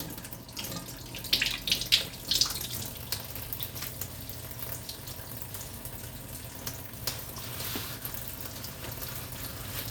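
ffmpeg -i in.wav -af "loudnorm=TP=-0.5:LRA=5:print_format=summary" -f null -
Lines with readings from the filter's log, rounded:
Input Integrated:    -33.3 LUFS
Input True Peak:      -7.1 dBTP
Input LRA:             8.0 LU
Input Threshold:     -43.3 LUFS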